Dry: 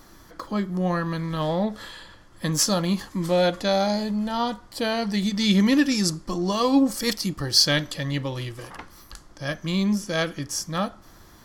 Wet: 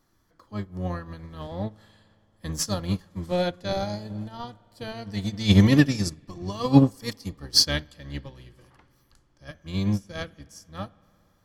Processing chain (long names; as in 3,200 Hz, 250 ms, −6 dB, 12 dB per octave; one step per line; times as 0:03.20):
sub-octave generator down 1 octave, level 0 dB
spring reverb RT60 3.3 s, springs 56 ms, chirp 50 ms, DRR 14.5 dB
expander for the loud parts 2.5 to 1, over −28 dBFS
level +3.5 dB